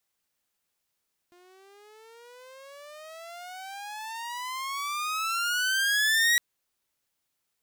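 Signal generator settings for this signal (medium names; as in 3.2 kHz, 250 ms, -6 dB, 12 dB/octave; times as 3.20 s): gliding synth tone saw, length 5.06 s, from 350 Hz, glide +29.5 st, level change +35.5 dB, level -16.5 dB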